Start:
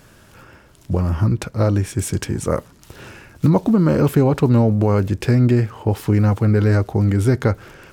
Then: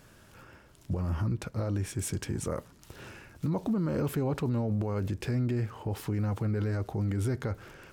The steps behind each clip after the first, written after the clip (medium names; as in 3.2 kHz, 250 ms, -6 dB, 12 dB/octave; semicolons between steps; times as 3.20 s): peak limiter -14.5 dBFS, peak gain reduction 9.5 dB; trim -8 dB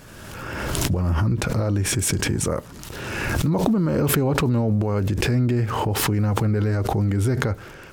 swell ahead of each attack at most 29 dB/s; trim +8.5 dB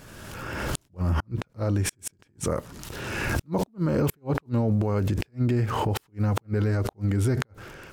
inverted gate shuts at -12 dBFS, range -40 dB; trim -2.5 dB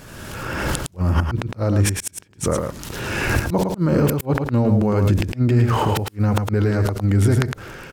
delay 109 ms -5 dB; trim +6 dB